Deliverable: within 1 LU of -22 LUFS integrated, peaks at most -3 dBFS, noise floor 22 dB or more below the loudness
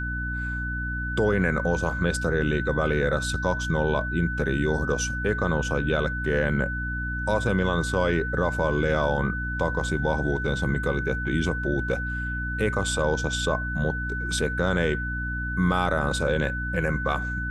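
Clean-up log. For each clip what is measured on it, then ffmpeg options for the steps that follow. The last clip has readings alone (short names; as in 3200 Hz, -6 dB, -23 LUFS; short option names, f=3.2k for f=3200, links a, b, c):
hum 60 Hz; harmonics up to 300 Hz; hum level -29 dBFS; steady tone 1500 Hz; tone level -30 dBFS; loudness -25.5 LUFS; peak -8.5 dBFS; loudness target -22.0 LUFS
-> -af "bandreject=f=60:t=h:w=6,bandreject=f=120:t=h:w=6,bandreject=f=180:t=h:w=6,bandreject=f=240:t=h:w=6,bandreject=f=300:t=h:w=6"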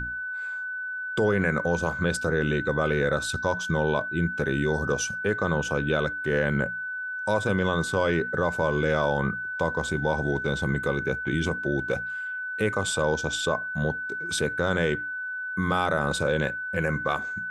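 hum none; steady tone 1500 Hz; tone level -30 dBFS
-> -af "bandreject=f=1.5k:w=30"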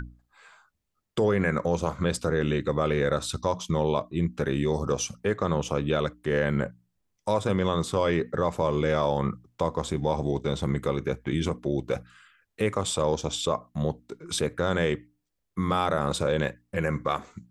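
steady tone none; loudness -27.5 LUFS; peak -10.0 dBFS; loudness target -22.0 LUFS
-> -af "volume=5.5dB"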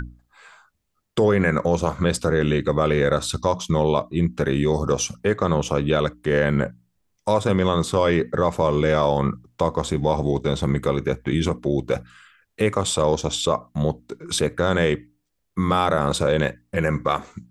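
loudness -22.0 LUFS; peak -4.5 dBFS; noise floor -73 dBFS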